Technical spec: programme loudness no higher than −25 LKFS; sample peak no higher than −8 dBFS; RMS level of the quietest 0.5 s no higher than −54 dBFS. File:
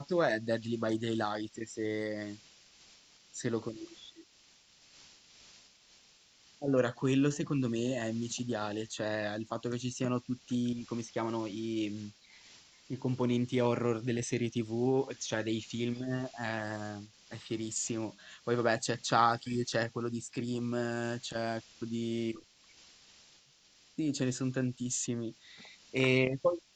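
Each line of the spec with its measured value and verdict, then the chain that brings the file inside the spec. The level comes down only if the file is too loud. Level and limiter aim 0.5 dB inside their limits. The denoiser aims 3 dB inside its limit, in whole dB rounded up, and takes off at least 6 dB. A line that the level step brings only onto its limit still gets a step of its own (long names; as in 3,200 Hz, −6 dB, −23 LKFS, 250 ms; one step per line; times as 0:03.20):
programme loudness −34.0 LKFS: in spec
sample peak −12.0 dBFS: in spec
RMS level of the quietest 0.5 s −64 dBFS: in spec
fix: no processing needed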